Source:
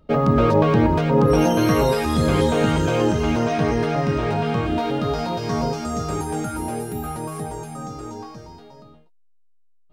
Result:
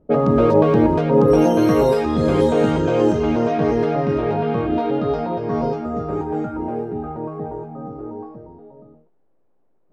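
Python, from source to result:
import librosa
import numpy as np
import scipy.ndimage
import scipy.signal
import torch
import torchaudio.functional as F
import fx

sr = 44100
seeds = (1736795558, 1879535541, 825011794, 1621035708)

y = fx.quant_dither(x, sr, seeds[0], bits=10, dither='triangular')
y = fx.peak_eq(y, sr, hz=410.0, db=10.0, octaves=2.5)
y = fx.env_lowpass(y, sr, base_hz=660.0, full_db=-5.5)
y = F.gain(torch.from_numpy(y), -5.5).numpy()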